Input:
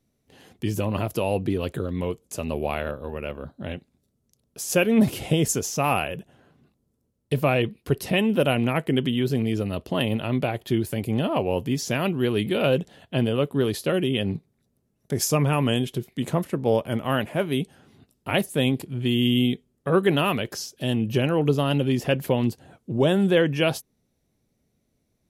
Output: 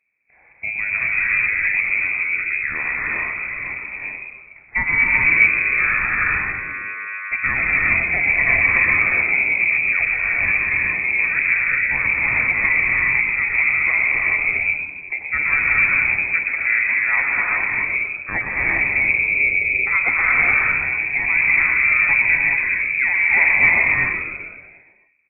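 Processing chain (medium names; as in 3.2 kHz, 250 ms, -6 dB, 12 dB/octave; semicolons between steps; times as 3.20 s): 4.82–7.49 s: mains buzz 100 Hz, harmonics 14, -35 dBFS -2 dB/octave; frequency-shifting echo 121 ms, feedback 59%, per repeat -96 Hz, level -6.5 dB; gated-style reverb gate 450 ms rising, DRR -3 dB; frequency inversion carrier 2.5 kHz; trim -1 dB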